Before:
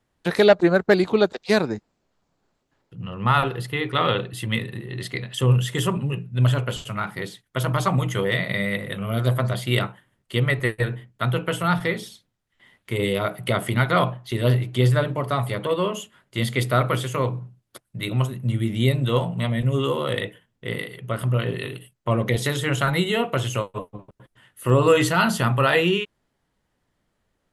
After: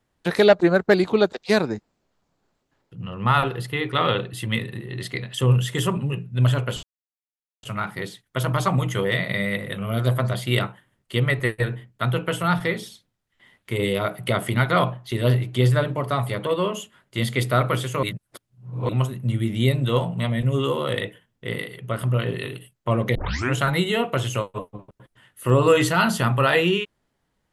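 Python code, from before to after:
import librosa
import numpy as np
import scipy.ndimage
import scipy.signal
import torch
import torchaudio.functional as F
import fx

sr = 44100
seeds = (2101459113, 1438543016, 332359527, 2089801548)

y = fx.edit(x, sr, fx.insert_silence(at_s=6.83, length_s=0.8),
    fx.reverse_span(start_s=17.23, length_s=0.86),
    fx.tape_start(start_s=22.35, length_s=0.38), tone=tone)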